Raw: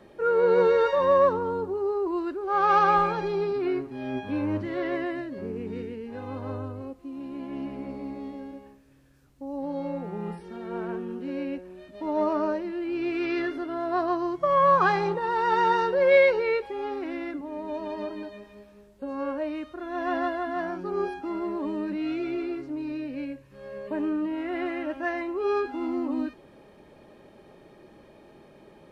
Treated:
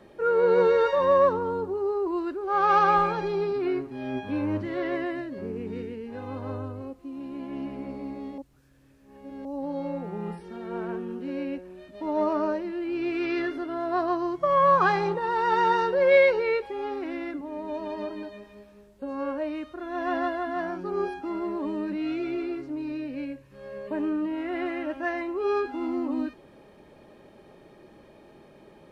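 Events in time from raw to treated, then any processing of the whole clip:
0:08.38–0:09.45: reverse

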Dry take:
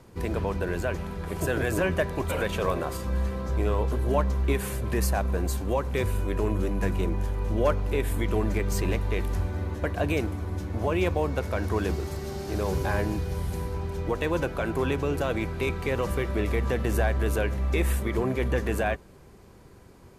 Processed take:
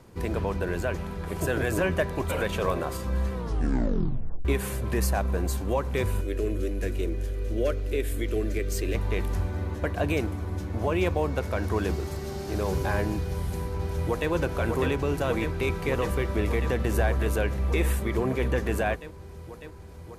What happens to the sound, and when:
0:03.33: tape stop 1.12 s
0:06.21–0:08.95: phaser with its sweep stopped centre 380 Hz, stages 4
0:13.19–0:14.30: delay throw 600 ms, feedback 85%, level −4.5 dB

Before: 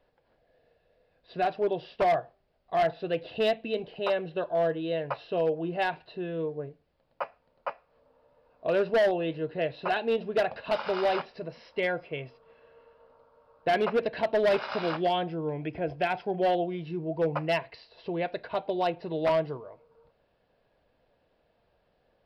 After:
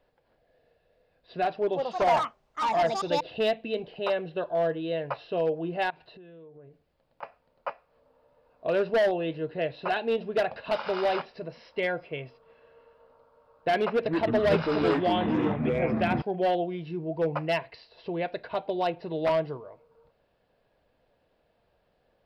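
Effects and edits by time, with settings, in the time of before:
0:01.55–0:03.52: delay with pitch and tempo change per echo 181 ms, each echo +5 semitones, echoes 2
0:05.90–0:07.23: downward compressor 8 to 1, threshold −47 dBFS
0:13.90–0:16.22: delay with pitch and tempo change per echo 150 ms, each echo −6 semitones, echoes 3

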